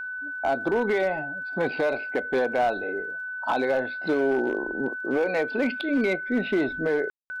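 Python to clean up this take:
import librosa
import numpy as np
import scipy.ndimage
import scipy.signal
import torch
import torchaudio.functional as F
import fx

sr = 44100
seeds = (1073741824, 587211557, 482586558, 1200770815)

y = fx.fix_declip(x, sr, threshold_db=-17.5)
y = fx.fix_declick_ar(y, sr, threshold=6.5)
y = fx.notch(y, sr, hz=1500.0, q=30.0)
y = fx.fix_ambience(y, sr, seeds[0], print_start_s=2.97, print_end_s=3.47, start_s=7.1, end_s=7.3)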